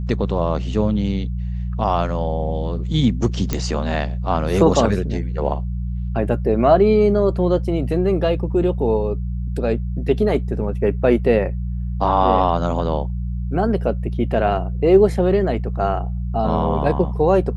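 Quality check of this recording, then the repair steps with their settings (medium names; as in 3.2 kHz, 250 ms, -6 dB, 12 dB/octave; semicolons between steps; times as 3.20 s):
hum 60 Hz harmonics 3 -24 dBFS
3.53 s: pop -6 dBFS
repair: de-click; de-hum 60 Hz, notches 3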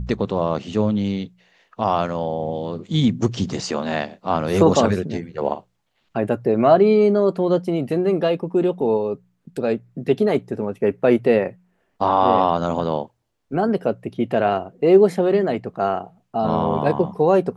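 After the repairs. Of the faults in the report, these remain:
nothing left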